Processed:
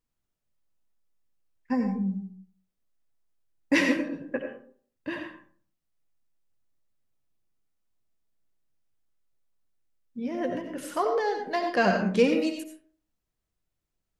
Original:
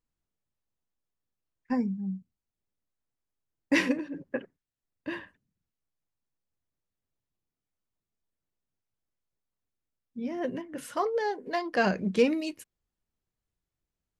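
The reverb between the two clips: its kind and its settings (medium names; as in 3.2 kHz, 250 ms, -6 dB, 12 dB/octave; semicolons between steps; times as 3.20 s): algorithmic reverb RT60 0.5 s, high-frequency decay 0.5×, pre-delay 45 ms, DRR 4 dB; trim +1.5 dB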